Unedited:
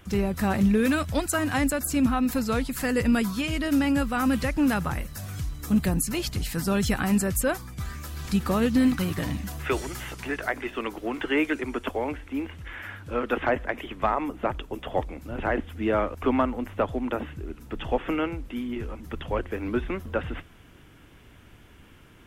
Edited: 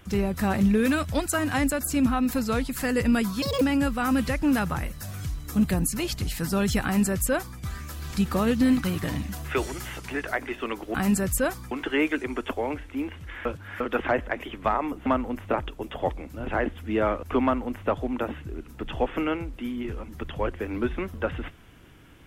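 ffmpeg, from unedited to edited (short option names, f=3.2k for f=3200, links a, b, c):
-filter_complex "[0:a]asplit=9[a][b][c][d][e][f][g][h][i];[a]atrim=end=3.424[j];[b]atrim=start=3.42:end=3.76,asetpts=PTS-STARTPTS,asetrate=77616,aresample=44100,atrim=end_sample=8519,asetpts=PTS-STARTPTS[k];[c]atrim=start=3.756:end=11.092[l];[d]atrim=start=6.978:end=7.752[m];[e]atrim=start=11.088:end=12.832[n];[f]atrim=start=12.828:end=13.182,asetpts=PTS-STARTPTS,areverse[o];[g]atrim=start=13.178:end=14.442[p];[h]atrim=start=16.348:end=16.812[q];[i]atrim=start=14.438[r];[j][k]acrossfade=d=0.004:c1=hsin:c2=hsin[s];[s][l]acrossfade=d=0.004:c1=hsin:c2=hsin[t];[t][m]acrossfade=d=0.004:c1=hsin:c2=hsin[u];[u][n]acrossfade=d=0.004:c1=hsin:c2=hsin[v];[v][o]acrossfade=d=0.004:c1=hsin:c2=hsin[w];[w][p]acrossfade=d=0.004:c1=hsin:c2=hsin[x];[x][q]acrossfade=d=0.004:c1=hsin:c2=hsin[y];[y][r]acrossfade=d=0.004:c1=hsin:c2=hsin"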